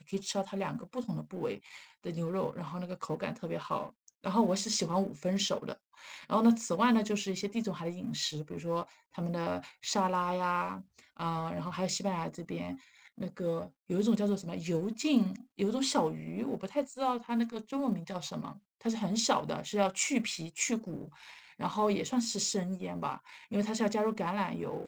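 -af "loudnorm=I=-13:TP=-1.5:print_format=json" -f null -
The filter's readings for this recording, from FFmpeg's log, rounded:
"input_i" : "-33.2",
"input_tp" : "-14.3",
"input_lra" : "4.9",
"input_thresh" : "-43.5",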